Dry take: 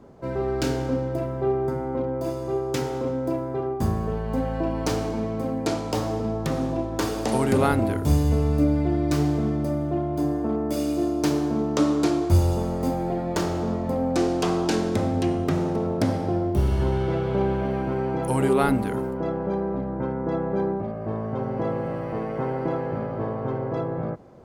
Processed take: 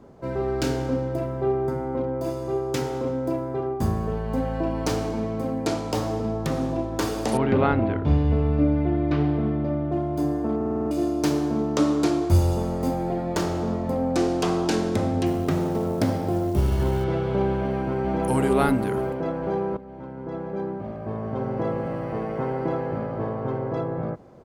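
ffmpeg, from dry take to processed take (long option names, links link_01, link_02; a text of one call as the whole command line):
ffmpeg -i in.wav -filter_complex "[0:a]asettb=1/sr,asplit=3[link_01][link_02][link_03];[link_01]atrim=end=7.374[link_04];[link_02]atrim=start=7.37:end=9.92,asetpts=PTS-STARTPTS,afade=type=in:duration=0.004:curve=qsin,afade=type=out:start_time=2.546:duration=0.004:curve=qsin,lowpass=frequency=3300:width=0.5412,lowpass=frequency=3300:width=1.3066[link_05];[link_03]atrim=start=9.916[link_06];[link_04][link_05]acrossfade=duration=0.004:curve1=hsin:curve2=qsin[link_07];[link_07][link_06]acrossfade=duration=0.004:curve1=qsin:curve2=hsin,asettb=1/sr,asplit=3[link_08][link_09][link_10];[link_08]atrim=end=15.264[link_11];[link_09]atrim=start=15.26:end=17.04,asetpts=PTS-STARTPTS,afade=type=in:duration=0.004:curve=qsin,afade=type=out:start_time=1.776:duration=0.004:curve=qsin,acrusher=bits=7:mode=log:mix=0:aa=0.000001[link_12];[link_10]atrim=start=17.036[link_13];[link_11][link_12]acrossfade=duration=0.004:curve1=hsin:curve2=qsin[link_14];[link_14][link_13]acrossfade=duration=0.004:curve1=qsin:curve2=hsin,asplit=2[link_15][link_16];[link_16]afade=type=in:start_time=17.58:duration=0.01,afade=type=out:start_time=18.2:duration=0.01,aecho=0:1:460|920|1380|1840|2300|2760|3220|3680|4140|4600|5060|5520:0.630957|0.504766|0.403813|0.32305|0.25844|0.206752|0.165402|0.132321|0.105857|0.0846857|0.0677485|0.0541988[link_17];[link_15][link_17]amix=inputs=2:normalize=0,asplit=9[link_18][link_19][link_20][link_21][link_22][link_23][link_24][link_25][link_26];[link_18]atrim=end=10.612[link_27];[link_19]atrim=start=10.558:end=10.612[link_28];[link_20]atrim=start=10.558:end=10.612[link_29];[link_21]atrim=start=10.558:end=10.612[link_30];[link_22]atrim=start=10.558:end=10.612[link_31];[link_23]atrim=start=10.558:end=10.612[link_32];[link_24]atrim=start=10.558:end=10.612[link_33];[link_25]atrim=start=10.908:end=19.77,asetpts=PTS-STARTPTS,afade=type=out:start_time=8.858:duration=0.004:curve=hsin:silence=0.177828[link_34];[link_26]atrim=start=19.77,asetpts=PTS-STARTPTS,afade=type=in:duration=1.75:silence=0.177828[link_35];[link_27][link_28]acrossfade=duration=0.004:curve1=hsin:curve2=hsin[link_36];[link_36][link_29]acrossfade=duration=0.004:curve1=hsin:curve2=hsin[link_37];[link_37][link_30]acrossfade=duration=0.004:curve1=hsin:curve2=hsin[link_38];[link_38][link_31]acrossfade=duration=0.004:curve1=hsin:curve2=hsin[link_39];[link_39][link_32]acrossfade=duration=0.004:curve1=hsin:curve2=hsin[link_40];[link_40][link_33]acrossfade=duration=0.004:curve1=hsin:curve2=hsin[link_41];[link_34][link_35]concat=n=2:v=0:a=1[link_42];[link_41][link_42]acrossfade=duration=0.004:curve1=hsin:curve2=hsin" out.wav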